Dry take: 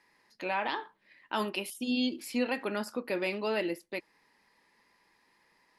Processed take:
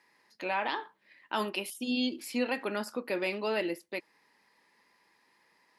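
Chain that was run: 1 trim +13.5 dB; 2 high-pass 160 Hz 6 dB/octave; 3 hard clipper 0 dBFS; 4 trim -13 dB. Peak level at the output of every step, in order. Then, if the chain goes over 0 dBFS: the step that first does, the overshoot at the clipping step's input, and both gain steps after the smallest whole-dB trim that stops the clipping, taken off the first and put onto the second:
-4.0 dBFS, -4.0 dBFS, -4.0 dBFS, -17.0 dBFS; nothing clips

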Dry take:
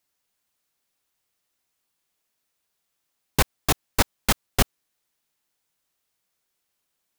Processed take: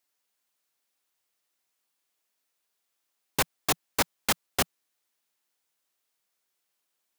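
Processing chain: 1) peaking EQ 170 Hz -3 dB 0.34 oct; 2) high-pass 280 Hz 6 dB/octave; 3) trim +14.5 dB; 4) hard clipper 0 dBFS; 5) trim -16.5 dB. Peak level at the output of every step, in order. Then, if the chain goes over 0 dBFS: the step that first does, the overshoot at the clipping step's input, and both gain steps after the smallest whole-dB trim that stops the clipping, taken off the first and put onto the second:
-4.0 dBFS, -7.0 dBFS, +7.5 dBFS, 0.0 dBFS, -16.5 dBFS; step 3, 7.5 dB; step 3 +6.5 dB, step 5 -8.5 dB

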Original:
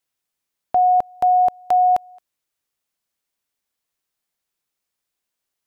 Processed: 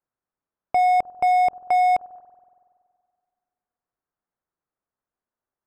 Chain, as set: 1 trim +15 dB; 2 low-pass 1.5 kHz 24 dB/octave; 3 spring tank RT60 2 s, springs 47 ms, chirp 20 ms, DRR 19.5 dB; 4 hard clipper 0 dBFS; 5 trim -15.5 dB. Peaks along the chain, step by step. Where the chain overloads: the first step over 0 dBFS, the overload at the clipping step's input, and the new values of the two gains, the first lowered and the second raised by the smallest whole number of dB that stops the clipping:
+3.5 dBFS, +4.0 dBFS, +4.0 dBFS, 0.0 dBFS, -15.5 dBFS; step 1, 4.0 dB; step 1 +11 dB, step 5 -11.5 dB

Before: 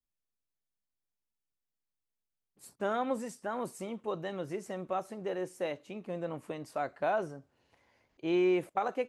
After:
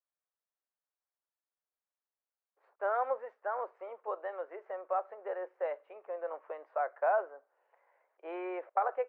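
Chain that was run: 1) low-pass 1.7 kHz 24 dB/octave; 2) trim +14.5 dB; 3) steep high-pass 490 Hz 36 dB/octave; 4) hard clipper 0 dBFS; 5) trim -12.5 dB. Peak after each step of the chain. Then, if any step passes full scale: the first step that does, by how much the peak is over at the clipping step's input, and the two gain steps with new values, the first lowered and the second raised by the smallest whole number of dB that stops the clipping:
-17.5 dBFS, -3.0 dBFS, -5.5 dBFS, -5.5 dBFS, -18.0 dBFS; nothing clips

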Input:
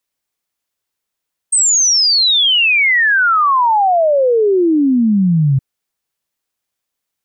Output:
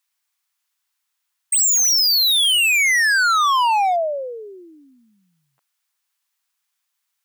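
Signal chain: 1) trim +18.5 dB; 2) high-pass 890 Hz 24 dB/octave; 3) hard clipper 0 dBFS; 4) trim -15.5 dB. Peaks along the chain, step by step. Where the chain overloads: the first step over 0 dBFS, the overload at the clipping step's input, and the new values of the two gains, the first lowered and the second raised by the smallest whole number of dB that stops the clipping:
+9.5 dBFS, +9.5 dBFS, 0.0 dBFS, -15.5 dBFS; step 1, 9.5 dB; step 1 +8.5 dB, step 4 -5.5 dB

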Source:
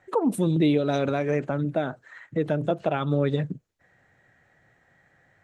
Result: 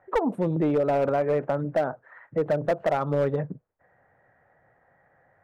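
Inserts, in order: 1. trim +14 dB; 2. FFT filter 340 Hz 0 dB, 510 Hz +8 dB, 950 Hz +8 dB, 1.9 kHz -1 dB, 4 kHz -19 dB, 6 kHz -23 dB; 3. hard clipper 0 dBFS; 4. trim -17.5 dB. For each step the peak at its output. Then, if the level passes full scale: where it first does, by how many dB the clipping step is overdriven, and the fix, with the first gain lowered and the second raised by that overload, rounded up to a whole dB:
+2.5 dBFS, +8.5 dBFS, 0.0 dBFS, -17.5 dBFS; step 1, 8.5 dB; step 1 +5 dB, step 4 -8.5 dB

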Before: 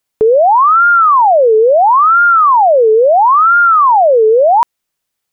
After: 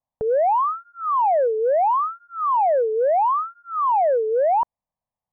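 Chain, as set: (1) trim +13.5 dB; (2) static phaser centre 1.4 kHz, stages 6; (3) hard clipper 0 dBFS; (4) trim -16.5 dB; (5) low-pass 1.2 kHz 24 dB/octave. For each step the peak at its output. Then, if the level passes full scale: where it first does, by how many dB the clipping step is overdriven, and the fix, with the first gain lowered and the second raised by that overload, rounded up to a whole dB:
+9.0 dBFS, +9.0 dBFS, 0.0 dBFS, -16.5 dBFS, -15.0 dBFS; step 1, 9.0 dB; step 1 +4.5 dB, step 4 -7.5 dB

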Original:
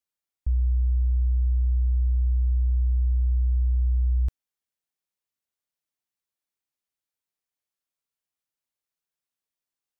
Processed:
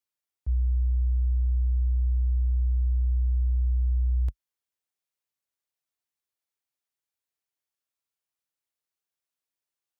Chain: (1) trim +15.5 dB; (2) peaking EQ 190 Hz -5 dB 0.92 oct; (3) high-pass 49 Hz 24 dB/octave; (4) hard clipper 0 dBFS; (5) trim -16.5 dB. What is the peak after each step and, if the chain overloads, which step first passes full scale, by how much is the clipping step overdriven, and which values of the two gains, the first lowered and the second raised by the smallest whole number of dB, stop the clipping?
-3.0 dBFS, -3.0 dBFS, -2.0 dBFS, -2.0 dBFS, -18.5 dBFS; nothing clips

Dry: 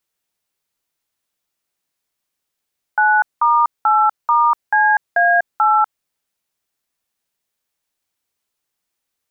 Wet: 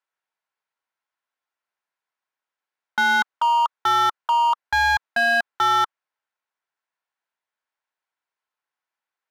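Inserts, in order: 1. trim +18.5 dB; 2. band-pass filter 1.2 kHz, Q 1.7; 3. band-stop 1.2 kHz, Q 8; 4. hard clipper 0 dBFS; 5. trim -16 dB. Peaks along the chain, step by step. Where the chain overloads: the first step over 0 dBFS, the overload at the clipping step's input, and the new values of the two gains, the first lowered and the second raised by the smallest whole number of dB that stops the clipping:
+11.5 dBFS, +10.0 dBFS, +8.5 dBFS, 0.0 dBFS, -16.0 dBFS; step 1, 8.5 dB; step 1 +9.5 dB, step 5 -7 dB

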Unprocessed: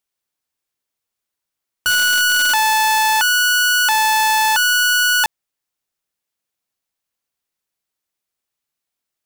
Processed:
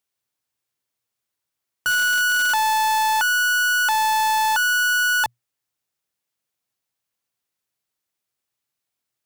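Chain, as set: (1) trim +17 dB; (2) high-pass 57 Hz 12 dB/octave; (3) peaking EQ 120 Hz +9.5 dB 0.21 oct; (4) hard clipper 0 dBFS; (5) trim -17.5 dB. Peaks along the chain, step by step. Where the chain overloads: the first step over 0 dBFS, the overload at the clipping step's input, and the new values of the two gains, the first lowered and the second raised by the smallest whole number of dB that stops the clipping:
+6.5 dBFS, +7.5 dBFS, +7.5 dBFS, 0.0 dBFS, -17.5 dBFS; step 1, 7.5 dB; step 1 +9 dB, step 5 -9.5 dB

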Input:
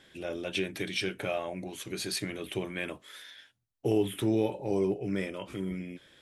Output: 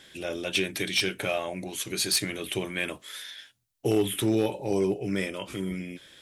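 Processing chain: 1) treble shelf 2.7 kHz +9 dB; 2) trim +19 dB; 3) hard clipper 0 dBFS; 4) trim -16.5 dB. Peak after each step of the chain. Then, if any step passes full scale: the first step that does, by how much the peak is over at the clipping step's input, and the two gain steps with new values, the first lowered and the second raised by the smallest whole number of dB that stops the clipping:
-13.0 dBFS, +6.0 dBFS, 0.0 dBFS, -16.5 dBFS; step 2, 6.0 dB; step 2 +13 dB, step 4 -10.5 dB

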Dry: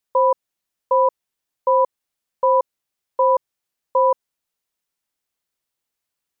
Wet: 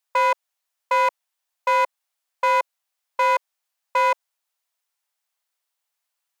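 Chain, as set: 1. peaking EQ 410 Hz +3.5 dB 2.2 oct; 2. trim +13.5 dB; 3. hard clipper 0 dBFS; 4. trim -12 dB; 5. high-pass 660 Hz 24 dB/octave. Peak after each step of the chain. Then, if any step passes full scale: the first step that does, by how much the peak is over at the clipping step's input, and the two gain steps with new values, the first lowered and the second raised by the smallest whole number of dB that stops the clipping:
-6.5 dBFS, +7.0 dBFS, 0.0 dBFS, -12.0 dBFS, -11.5 dBFS; step 2, 7.0 dB; step 2 +6.5 dB, step 4 -5 dB

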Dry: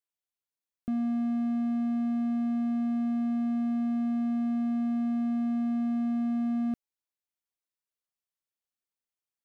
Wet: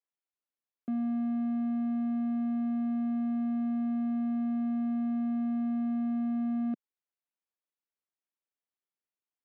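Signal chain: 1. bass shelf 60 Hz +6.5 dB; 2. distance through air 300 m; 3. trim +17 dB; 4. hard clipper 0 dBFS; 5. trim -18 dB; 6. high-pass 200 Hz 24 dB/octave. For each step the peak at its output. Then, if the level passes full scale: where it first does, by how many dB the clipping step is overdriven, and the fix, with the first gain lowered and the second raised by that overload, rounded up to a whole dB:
-22.5 dBFS, -23.0 dBFS, -6.0 dBFS, -6.0 dBFS, -24.0 dBFS, -26.5 dBFS; nothing clips

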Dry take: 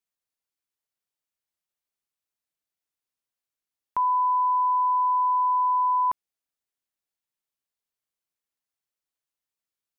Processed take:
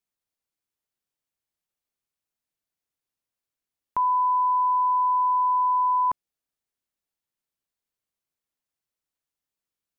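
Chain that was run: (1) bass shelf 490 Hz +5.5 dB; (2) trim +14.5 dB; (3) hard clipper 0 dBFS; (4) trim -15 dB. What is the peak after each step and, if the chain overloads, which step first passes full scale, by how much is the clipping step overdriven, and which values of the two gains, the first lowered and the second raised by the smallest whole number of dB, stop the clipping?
-17.0 dBFS, -2.5 dBFS, -2.5 dBFS, -17.5 dBFS; nothing clips

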